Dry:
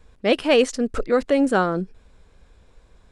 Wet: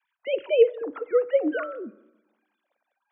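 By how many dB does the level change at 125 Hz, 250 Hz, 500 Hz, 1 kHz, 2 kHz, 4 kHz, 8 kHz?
below −30 dB, −11.5 dB, −1.5 dB, −13.5 dB, −9.0 dB, below −10 dB, below −40 dB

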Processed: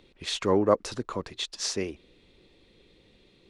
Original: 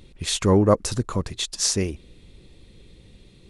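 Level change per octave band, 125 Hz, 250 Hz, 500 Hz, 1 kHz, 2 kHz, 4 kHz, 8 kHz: −14.5, −7.5, −3.5, −3.0, −3.0, −5.5, −10.5 decibels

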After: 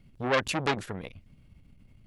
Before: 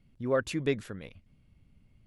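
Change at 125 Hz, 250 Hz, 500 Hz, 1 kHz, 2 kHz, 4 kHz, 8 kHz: +1.0, −0.5, −0.5, +10.0, +7.0, +8.5, +6.0 decibels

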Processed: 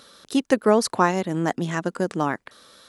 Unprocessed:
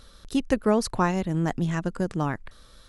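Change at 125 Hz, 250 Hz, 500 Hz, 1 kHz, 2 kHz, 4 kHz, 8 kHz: −2.5, +1.5, +5.0, +5.5, +5.0, +5.0, +5.5 decibels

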